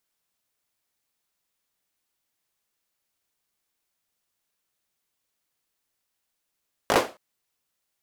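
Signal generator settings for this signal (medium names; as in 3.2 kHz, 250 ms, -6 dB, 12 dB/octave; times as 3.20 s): hand clap length 0.27 s, bursts 4, apart 19 ms, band 530 Hz, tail 0.29 s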